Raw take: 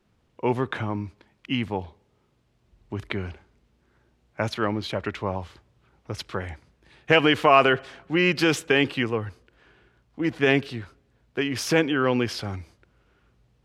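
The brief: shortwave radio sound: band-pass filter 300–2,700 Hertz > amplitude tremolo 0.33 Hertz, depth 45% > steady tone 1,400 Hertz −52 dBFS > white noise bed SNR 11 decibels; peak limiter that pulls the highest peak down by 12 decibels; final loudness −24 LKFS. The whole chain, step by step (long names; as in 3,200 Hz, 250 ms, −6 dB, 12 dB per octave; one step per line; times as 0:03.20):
brickwall limiter −15.5 dBFS
band-pass filter 300–2,700 Hz
amplitude tremolo 0.33 Hz, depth 45%
steady tone 1,400 Hz −52 dBFS
white noise bed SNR 11 dB
level +11 dB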